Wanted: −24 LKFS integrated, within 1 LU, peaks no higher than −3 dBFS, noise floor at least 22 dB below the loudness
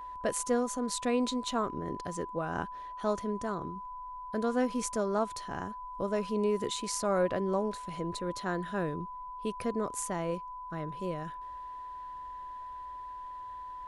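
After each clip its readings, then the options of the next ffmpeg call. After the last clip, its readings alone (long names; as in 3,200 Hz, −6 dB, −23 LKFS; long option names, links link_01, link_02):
interfering tone 1,000 Hz; level of the tone −40 dBFS; integrated loudness −34.5 LKFS; sample peak −16.0 dBFS; target loudness −24.0 LKFS
→ -af "bandreject=frequency=1000:width=30"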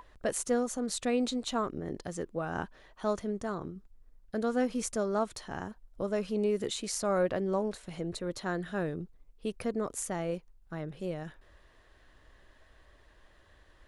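interfering tone none found; integrated loudness −34.0 LKFS; sample peak −15.5 dBFS; target loudness −24.0 LKFS
→ -af "volume=10dB"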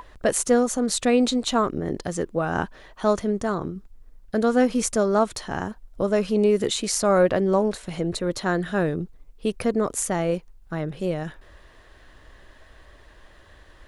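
integrated loudness −24.0 LKFS; sample peak −5.5 dBFS; background noise floor −52 dBFS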